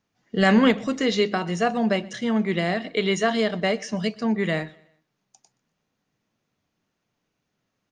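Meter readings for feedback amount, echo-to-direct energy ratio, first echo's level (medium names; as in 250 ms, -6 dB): 41%, -22.5 dB, -23.5 dB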